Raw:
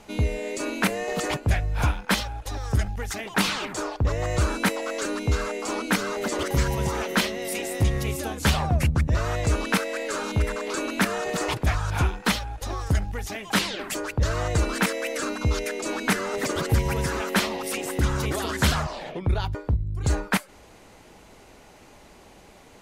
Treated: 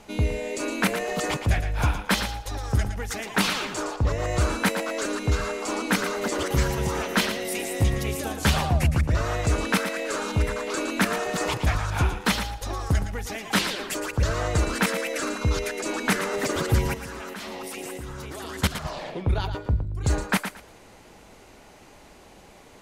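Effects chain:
0:16.94–0:18.85: output level in coarse steps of 18 dB
feedback echo with a high-pass in the loop 114 ms, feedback 21%, high-pass 190 Hz, level −8.5 dB

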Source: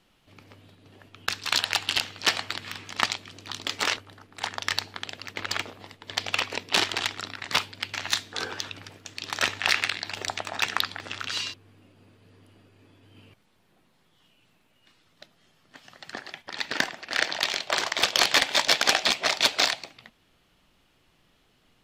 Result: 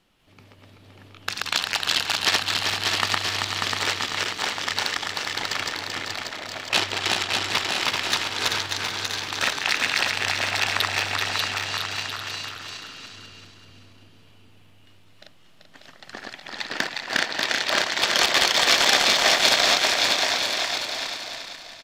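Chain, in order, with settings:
feedback delay that plays each chunk backwards 193 ms, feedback 62%, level −0.5 dB
0:06.14–0:06.73: four-pole ladder band-pass 690 Hz, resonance 65%
bouncing-ball delay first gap 590 ms, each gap 0.7×, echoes 5
level −1 dB

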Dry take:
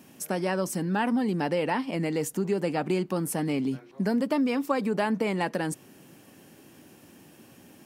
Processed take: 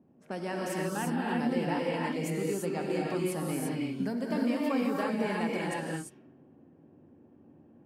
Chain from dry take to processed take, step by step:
low-pass that shuts in the quiet parts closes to 540 Hz, open at −25.5 dBFS
reverb whose tail is shaped and stops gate 370 ms rising, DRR −3.5 dB
level −8.5 dB

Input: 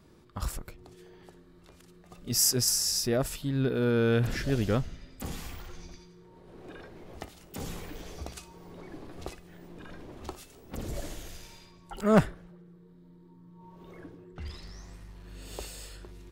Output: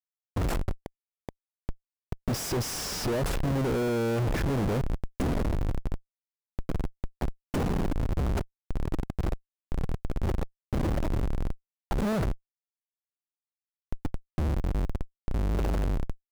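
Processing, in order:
comparator with hysteresis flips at −39 dBFS
tilt shelving filter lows +5 dB, about 1,400 Hz
level +3 dB

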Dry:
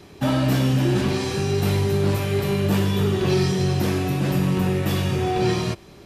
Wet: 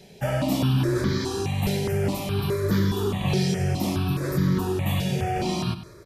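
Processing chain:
repeating echo 98 ms, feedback 51%, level −14 dB
step-sequenced phaser 4.8 Hz 310–2,700 Hz

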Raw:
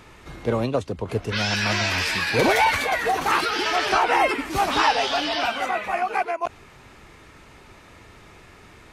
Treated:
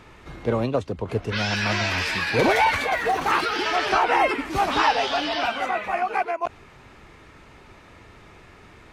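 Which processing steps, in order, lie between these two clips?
high-shelf EQ 5,800 Hz −8.5 dB
0:02.87–0:03.66: surface crackle 170 per second → 51 per second −34 dBFS

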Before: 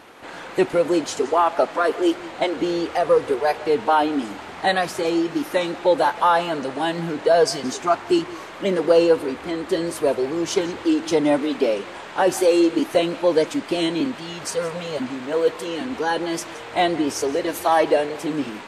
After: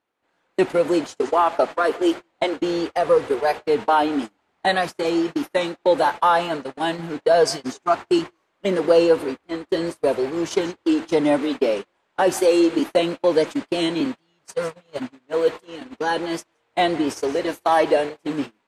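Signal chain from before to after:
noise gate −25 dBFS, range −33 dB

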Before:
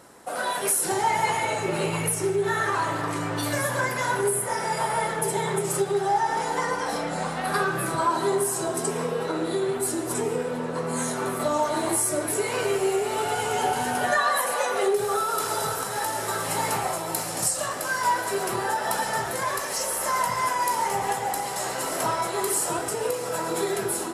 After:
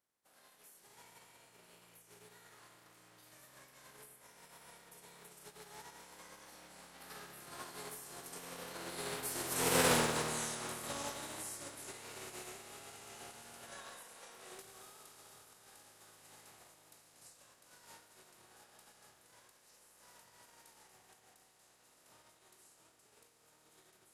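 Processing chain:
compressing power law on the bin magnitudes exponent 0.46
source passing by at 0:09.90, 20 m/s, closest 2.4 metres
level +1 dB

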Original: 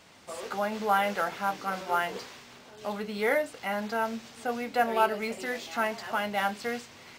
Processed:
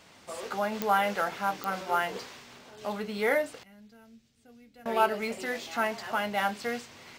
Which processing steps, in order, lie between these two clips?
0:03.63–0:04.86: guitar amp tone stack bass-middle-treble 10-0-1
digital clicks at 0:00.82/0:01.64, −13 dBFS

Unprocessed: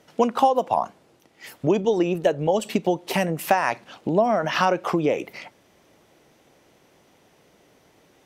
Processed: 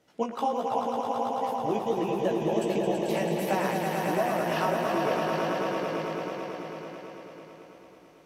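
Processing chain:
echo that builds up and dies away 110 ms, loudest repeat 5, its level −5.5 dB
chorus effect 1.4 Hz, delay 15 ms, depth 3.5 ms
level −7 dB

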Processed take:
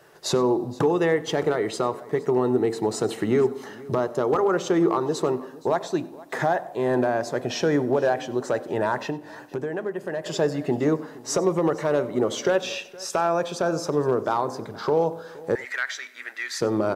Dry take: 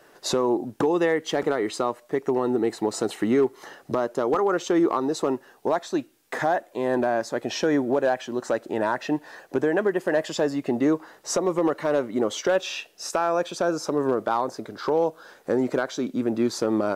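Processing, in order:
single-tap delay 469 ms −21 dB
on a send at −14 dB: convolution reverb RT60 1.0 s, pre-delay 3 ms
0:09.10–0:10.26: on the sum: downward compressor 2 to 1, threshold −32 dBFS, peak gain reduction 9 dB
0:15.55–0:16.61: high-pass with resonance 1,900 Hz, resonance Q 9.1
single-tap delay 95 ms −21.5 dB

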